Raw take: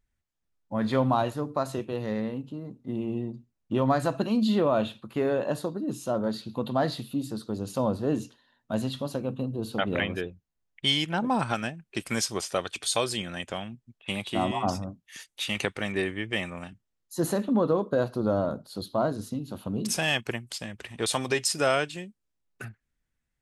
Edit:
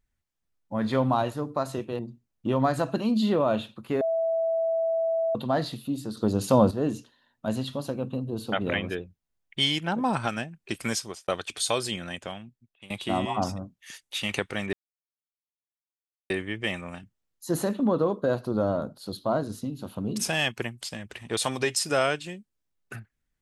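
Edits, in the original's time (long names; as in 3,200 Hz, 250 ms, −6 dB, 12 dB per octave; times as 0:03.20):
0:01.99–0:03.25: remove
0:05.27–0:06.61: beep over 657 Hz −22.5 dBFS
0:07.43–0:07.97: clip gain +7.5 dB
0:12.16–0:12.54: fade out linear
0:13.31–0:14.16: fade out, to −20.5 dB
0:15.99: splice in silence 1.57 s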